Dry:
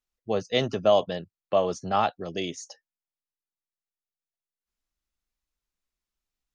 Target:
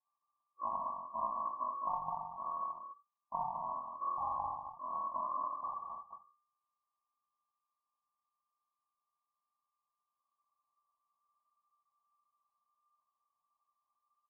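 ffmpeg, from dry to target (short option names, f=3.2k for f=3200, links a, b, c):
-af "acrusher=samples=27:mix=1:aa=0.000001,equalizer=f=500:t=o:w=1:g=-9,equalizer=f=1k:t=o:w=1:g=-6,equalizer=f=2k:t=o:w=1:g=-11,acompressor=threshold=-37dB:ratio=16,lowpass=f=2.2k:t=q:w=0.5098,lowpass=f=2.2k:t=q:w=0.6013,lowpass=f=2.2k:t=q:w=0.9,lowpass=f=2.2k:t=q:w=2.563,afreqshift=-2600,asetrate=20198,aresample=44100,bandreject=f=50:t=h:w=6,bandreject=f=100:t=h:w=6,bandreject=f=150:t=h:w=6,bandreject=f=200:t=h:w=6,aecho=1:1:61.22|209.9:0.631|0.562,volume=2dB"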